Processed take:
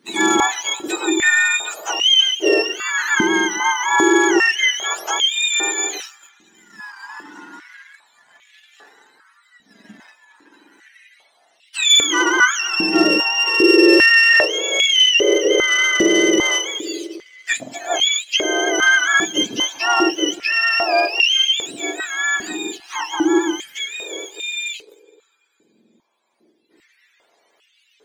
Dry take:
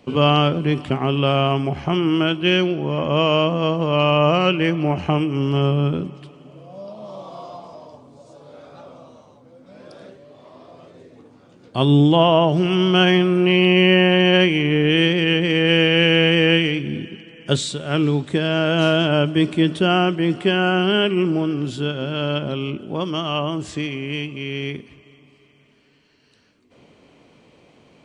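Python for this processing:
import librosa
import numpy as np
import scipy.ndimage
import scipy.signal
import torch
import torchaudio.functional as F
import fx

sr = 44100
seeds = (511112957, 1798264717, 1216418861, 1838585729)

y = fx.octave_mirror(x, sr, pivot_hz=1000.0)
y = fx.leveller(y, sr, passes=1)
y = fx.filter_held_highpass(y, sr, hz=2.5, low_hz=220.0, high_hz=2800.0)
y = F.gain(torch.from_numpy(y), -3.5).numpy()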